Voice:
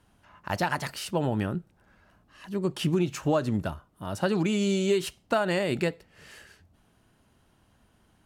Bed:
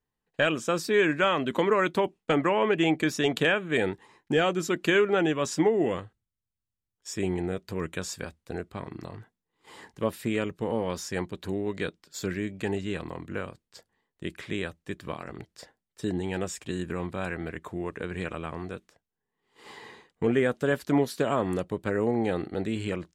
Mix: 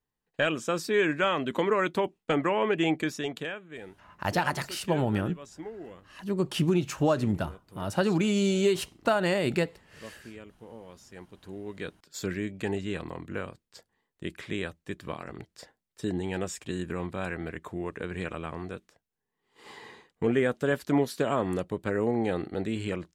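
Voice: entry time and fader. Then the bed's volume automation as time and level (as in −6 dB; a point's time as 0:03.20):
3.75 s, +0.5 dB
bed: 0:02.96 −2 dB
0:03.78 −17.5 dB
0:11.05 −17.5 dB
0:12.16 −1 dB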